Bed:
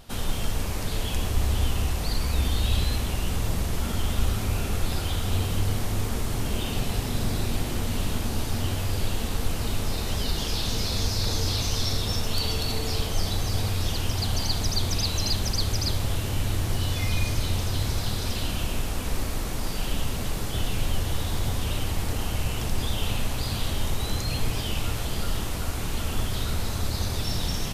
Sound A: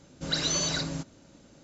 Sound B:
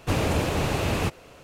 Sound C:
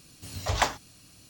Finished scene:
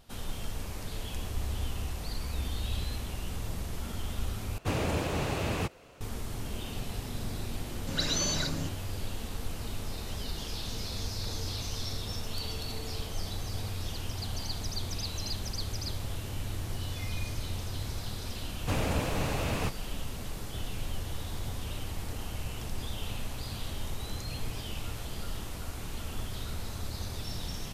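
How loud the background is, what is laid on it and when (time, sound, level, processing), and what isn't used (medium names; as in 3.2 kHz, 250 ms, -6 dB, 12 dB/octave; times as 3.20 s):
bed -9.5 dB
4.58 s: replace with B -6 dB
7.66 s: add A -2.5 dB
18.60 s: add B -6 dB + peaking EQ 370 Hz -8 dB 0.22 oct
not used: C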